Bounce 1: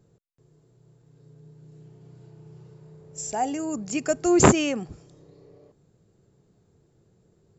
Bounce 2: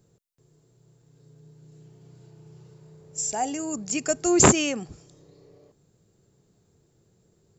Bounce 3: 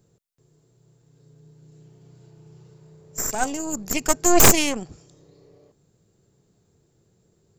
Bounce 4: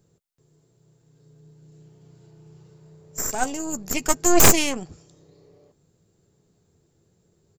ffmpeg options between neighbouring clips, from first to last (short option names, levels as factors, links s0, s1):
-af "highshelf=f=3500:g=9.5,volume=0.794"
-af "aeval=exprs='0.794*(cos(1*acos(clip(val(0)/0.794,-1,1)))-cos(1*PI/2))+0.141*(cos(3*acos(clip(val(0)/0.794,-1,1)))-cos(3*PI/2))+0.2*(cos(6*acos(clip(val(0)/0.794,-1,1)))-cos(6*PI/2))':c=same,aeval=exprs='0.355*(abs(mod(val(0)/0.355+3,4)-2)-1)':c=same,volume=2.24"
-filter_complex "[0:a]asplit=2[s0][s1];[s1]adelay=12,volume=0.237[s2];[s0][s2]amix=inputs=2:normalize=0,volume=0.891"